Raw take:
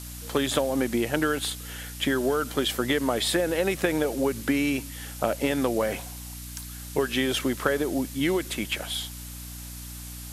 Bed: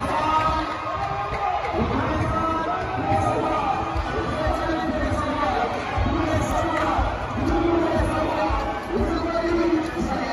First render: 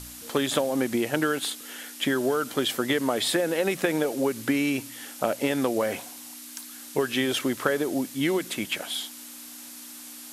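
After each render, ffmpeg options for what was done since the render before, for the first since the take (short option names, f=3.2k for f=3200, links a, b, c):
-af "bandreject=f=60:t=h:w=4,bandreject=f=120:t=h:w=4,bandreject=f=180:t=h:w=4"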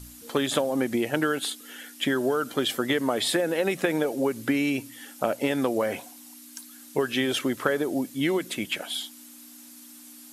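-af "afftdn=nr=8:nf=-43"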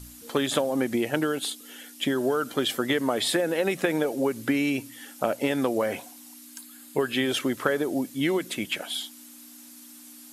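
-filter_complex "[0:a]asettb=1/sr,asplit=3[a][b][c];[a]atrim=end=1.194[d];[b]atrim=start=1.19:end=2.18,asetpts=PTS-STARTPTS,afade=t=in:d=0.004:c=qsin,afade=t=out:st=0.986:d=0.004:c=qsin,equalizer=f=1.6k:w=1.6:g=-5.5[e];[c]atrim=start=2.176[f];[d][e]acrossfade=d=0.004:c1=hsin:c2=qsin[g];[g][f]acrossfade=d=0.004:c1=qsin:c2=hsin,asettb=1/sr,asplit=3[h][i][j];[h]atrim=end=6.544[k];[i]atrim=start=6.54:end=7.26,asetpts=PTS-STARTPTS,afade=t=in:d=0.004:c=qsin,afade=t=out:st=0.716:d=0.004:c=qsin,bandreject=f=5.8k:w=5.3[l];[j]atrim=start=7.256[m];[k][l]acrossfade=d=0.004:c1=hsin:c2=qsin[n];[n][m]acrossfade=d=0.004:c1=qsin:c2=hsin"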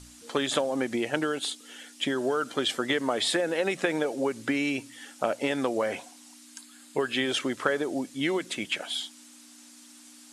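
-af "lowpass=f=9.1k:w=0.5412,lowpass=f=9.1k:w=1.3066,lowshelf=f=320:g=-6.5"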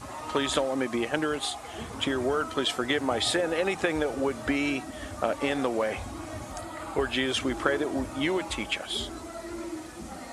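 -filter_complex "[1:a]volume=-16dB[a];[0:a][a]amix=inputs=2:normalize=0"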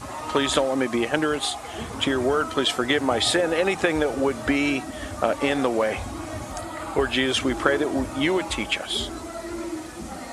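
-af "volume=5dB"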